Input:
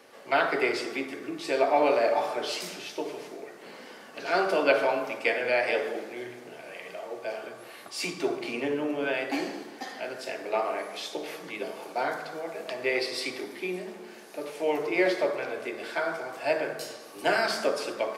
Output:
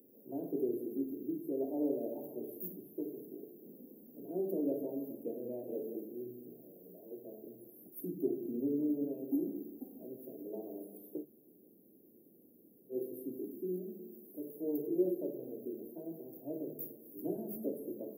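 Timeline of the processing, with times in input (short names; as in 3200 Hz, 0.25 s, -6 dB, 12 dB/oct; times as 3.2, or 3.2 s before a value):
11.23–12.92 room tone, crossfade 0.06 s
whole clip: inverse Chebyshev band-stop 1200–7600 Hz, stop band 70 dB; tilt +4.5 dB/oct; notches 50/100/150 Hz; gain +9.5 dB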